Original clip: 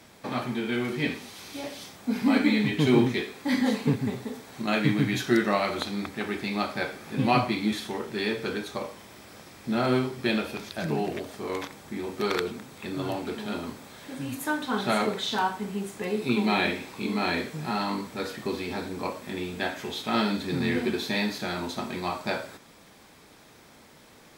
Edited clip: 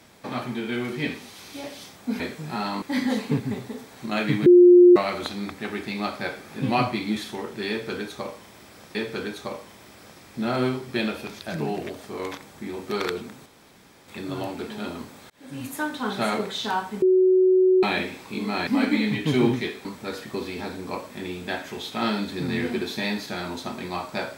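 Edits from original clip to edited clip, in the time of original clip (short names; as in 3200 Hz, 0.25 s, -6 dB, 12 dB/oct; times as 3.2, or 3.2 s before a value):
2.2–3.38 swap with 17.35–17.97
5.02–5.52 bleep 355 Hz -8 dBFS
8.25–9.51 loop, 2 plays
12.76 insert room tone 0.62 s
13.98–14.29 fade in
15.7–16.51 bleep 372 Hz -14 dBFS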